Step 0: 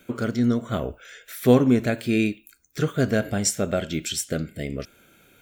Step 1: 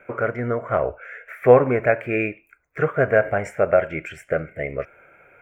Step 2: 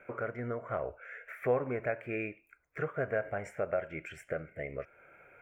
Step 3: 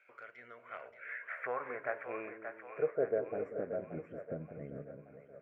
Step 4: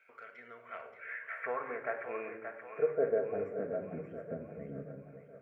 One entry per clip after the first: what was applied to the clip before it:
EQ curve 150 Hz 0 dB, 230 Hz -9 dB, 550 Hz +12 dB, 1200 Hz +10 dB, 2300 Hz +10 dB, 3800 Hz -28 dB, 7200 Hz -20 dB; gain -2 dB
compressor 1.5:1, threshold -39 dBFS, peak gain reduction 11.5 dB; gain -6 dB
band-pass sweep 4400 Hz -> 210 Hz, 0.11–3.92; split-band echo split 500 Hz, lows 0.193 s, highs 0.577 s, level -7.5 dB; gain +5 dB
shoebox room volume 2500 m³, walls furnished, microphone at 1.6 m

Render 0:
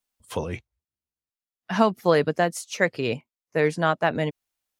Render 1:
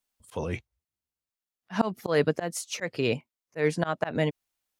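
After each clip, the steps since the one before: auto swell 0.143 s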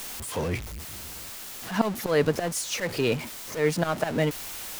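zero-crossing step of -30.5 dBFS

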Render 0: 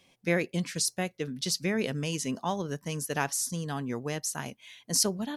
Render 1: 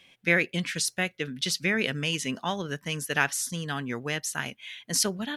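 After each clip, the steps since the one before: band shelf 2200 Hz +9 dB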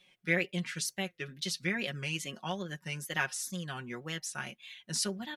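wow and flutter 130 cents; comb 5.5 ms, depth 72%; gain -9 dB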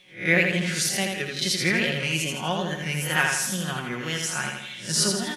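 spectral swells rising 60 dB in 0.35 s; on a send: feedback echo 82 ms, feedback 49%, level -4 dB; on the sum: gain +7.5 dB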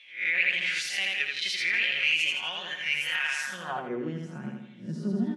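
limiter -17 dBFS, peak gain reduction 11.5 dB; band-pass sweep 2500 Hz -> 230 Hz, 3.36–4.15; gain +6 dB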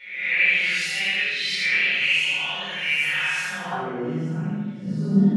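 spectral swells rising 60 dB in 0.77 s; shoebox room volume 390 m³, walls mixed, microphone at 4.6 m; gain -8.5 dB

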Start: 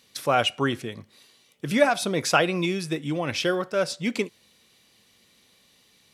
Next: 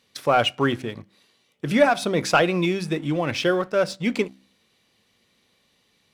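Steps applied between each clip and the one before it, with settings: high shelf 4600 Hz -9 dB; de-hum 64.78 Hz, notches 5; sample leveller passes 1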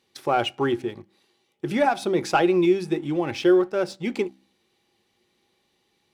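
small resonant body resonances 360/810 Hz, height 14 dB, ringing for 75 ms; gain -5.5 dB

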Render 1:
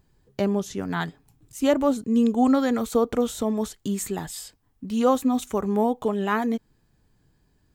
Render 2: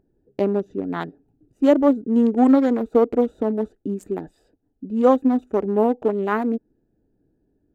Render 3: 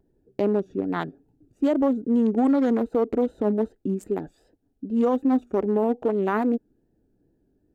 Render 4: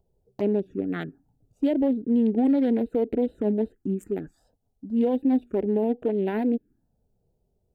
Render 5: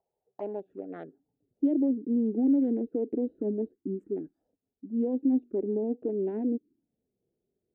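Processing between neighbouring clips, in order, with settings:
Wiener smoothing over 41 samples; EQ curve 150 Hz 0 dB, 300 Hz +14 dB, 6500 Hz +1 dB; gain -6 dB
vibrato 2.5 Hz 72 cents; limiter -14 dBFS, peak gain reduction 9.5 dB
envelope phaser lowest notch 290 Hz, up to 1200 Hz, full sweep at -21 dBFS
band-pass sweep 800 Hz -> 320 Hz, 0.65–1.54

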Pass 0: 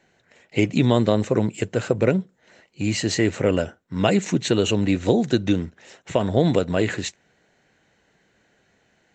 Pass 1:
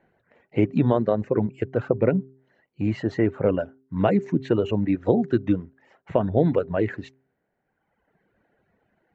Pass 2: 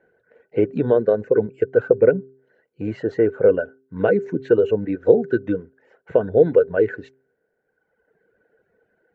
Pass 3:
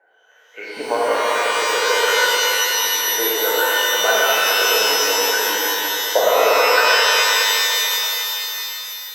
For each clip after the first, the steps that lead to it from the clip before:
LPF 1400 Hz 12 dB/oct; reverb removal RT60 1.4 s; de-hum 132.2 Hz, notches 3
small resonant body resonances 460/1500 Hz, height 17 dB, ringing for 30 ms; gain -5.5 dB
LFO high-pass saw up 1.3 Hz 760–1800 Hz; delay with a stepping band-pass 0.101 s, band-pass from 490 Hz, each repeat 0.7 oct, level -3.5 dB; shimmer reverb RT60 3.4 s, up +12 st, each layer -2 dB, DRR -7 dB

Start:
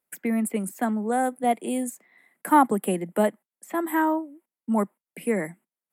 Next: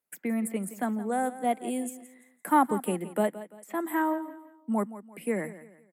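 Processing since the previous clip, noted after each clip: feedback echo 0.17 s, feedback 35%, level -15 dB; gain -4.5 dB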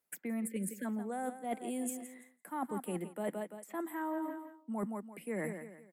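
spectral delete 0.47–0.85, 590–1500 Hz; reverse; compressor 16:1, threshold -36 dBFS, peak gain reduction 20.5 dB; reverse; gain +2 dB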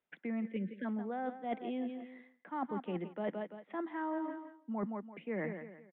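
speakerphone echo 0.16 s, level -24 dB; downsampling 8000 Hz

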